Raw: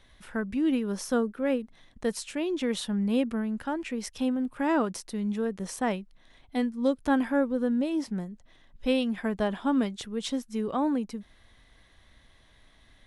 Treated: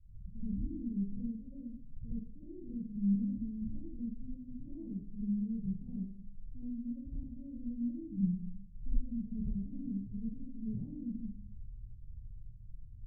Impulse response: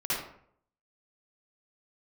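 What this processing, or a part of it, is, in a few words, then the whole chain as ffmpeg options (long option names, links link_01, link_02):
club heard from the street: -filter_complex "[0:a]alimiter=limit=-22.5dB:level=0:latency=1:release=318,lowpass=frequency=130:width=0.5412,lowpass=frequency=130:width=1.3066[link_01];[1:a]atrim=start_sample=2205[link_02];[link_01][link_02]afir=irnorm=-1:irlink=0,volume=6.5dB"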